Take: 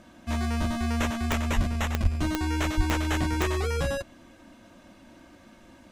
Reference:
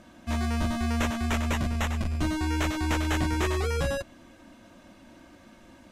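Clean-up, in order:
click removal
0:01.55–0:01.67: high-pass filter 140 Hz 24 dB per octave
0:02.02–0:02.14: high-pass filter 140 Hz 24 dB per octave
0:02.76–0:02.88: high-pass filter 140 Hz 24 dB per octave

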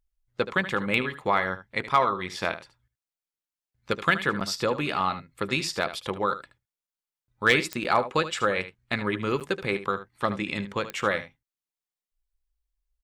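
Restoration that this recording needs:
clipped peaks rebuilt −9.5 dBFS
click removal
repair the gap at 0:04.40/0:06.87/0:07.84/0:09.40, 7.9 ms
echo removal 75 ms −13 dB

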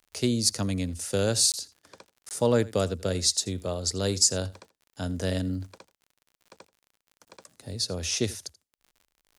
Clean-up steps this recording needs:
click removal
repair the gap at 0:01.52/0:02.29/0:07.25, 18 ms
echo removal 83 ms −20.5 dB

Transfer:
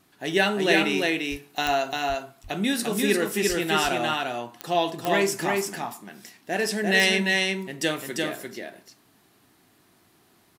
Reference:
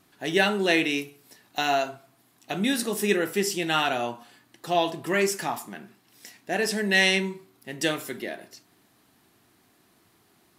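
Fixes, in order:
click removal
0:01.30–0:01.42: high-pass filter 140 Hz 24 dB per octave
0:02.08–0:02.20: high-pass filter 140 Hz 24 dB per octave
0:03.48–0:03.60: high-pass filter 140 Hz 24 dB per octave
echo removal 346 ms −3 dB

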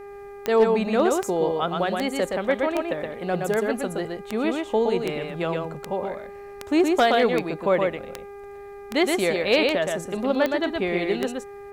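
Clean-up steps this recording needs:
clipped peaks rebuilt −10.5 dBFS
click removal
hum removal 402.7 Hz, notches 6
echo removal 120 ms −3.5 dB

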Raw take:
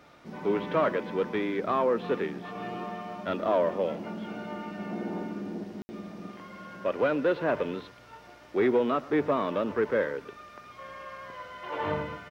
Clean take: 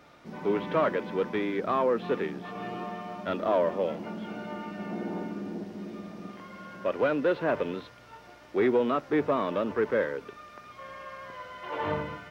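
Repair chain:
ambience match 0:05.82–0:05.89
echo removal 119 ms −20.5 dB

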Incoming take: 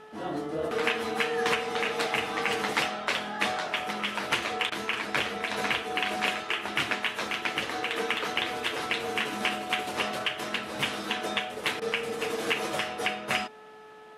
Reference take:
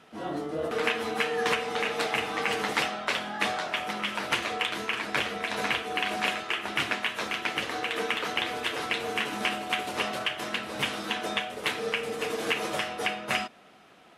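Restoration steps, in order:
hum removal 431.1 Hz, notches 4
repair the gap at 0:04.70/0:11.80, 15 ms

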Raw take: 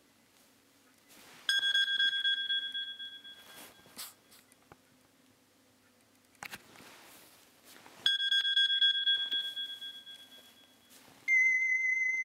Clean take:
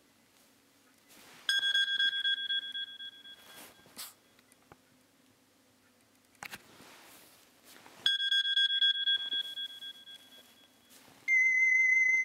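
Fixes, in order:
repair the gap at 0:00.64/0:04.40/0:07.30/0:08.41/0:09.32, 2.4 ms
echo removal 330 ms −15.5 dB
level correction +5 dB, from 0:11.57

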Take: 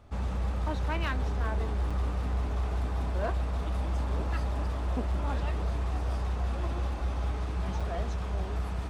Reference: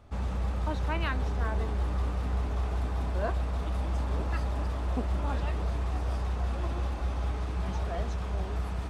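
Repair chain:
clipped peaks rebuilt −23.5 dBFS
repair the gap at 0:01.90/0:07.80, 5.5 ms

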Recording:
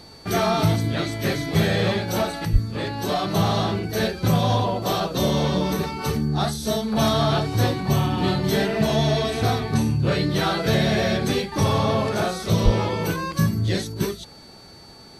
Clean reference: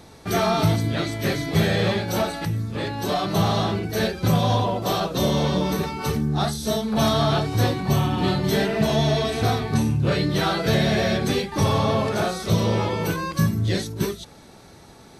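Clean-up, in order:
notch filter 4,500 Hz, Q 30
high-pass at the plosives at 0:02.52/0:12.64

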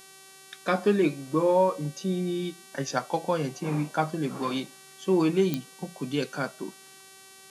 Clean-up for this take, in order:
click removal
hum removal 384.5 Hz, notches 31

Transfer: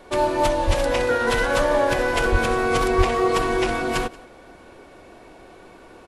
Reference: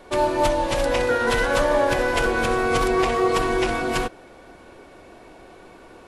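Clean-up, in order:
0:00.66–0:00.78: high-pass filter 140 Hz 24 dB per octave
0:02.31–0:02.43: high-pass filter 140 Hz 24 dB per octave
0:02.97–0:03.09: high-pass filter 140 Hz 24 dB per octave
echo removal 180 ms −22.5 dB

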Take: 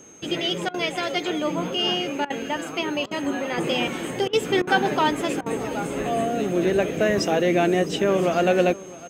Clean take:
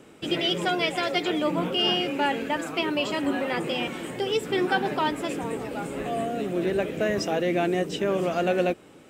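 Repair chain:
notch filter 6,400 Hz, Q 30
repair the gap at 0:00.69/0:02.25/0:03.06/0:04.28/0:04.62/0:05.41, 50 ms
echo removal 659 ms −19.5 dB
level correction −4.5 dB, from 0:03.58

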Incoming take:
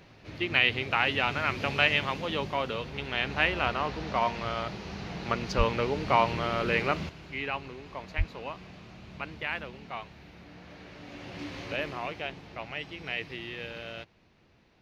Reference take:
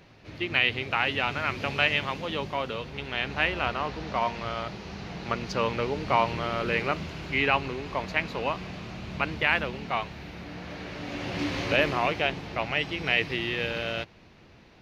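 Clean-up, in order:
high-pass at the plosives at 0:05.57/0:08.17
level 0 dB, from 0:07.09 +9.5 dB

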